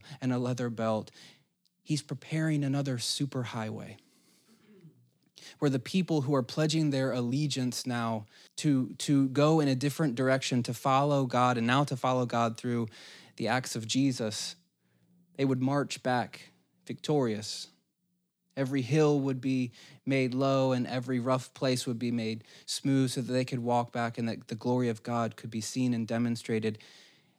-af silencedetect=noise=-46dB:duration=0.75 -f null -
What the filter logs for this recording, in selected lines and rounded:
silence_start: 3.99
silence_end: 4.85 | silence_duration: 0.86
silence_start: 14.53
silence_end: 15.39 | silence_duration: 0.86
silence_start: 17.66
silence_end: 18.57 | silence_duration: 0.91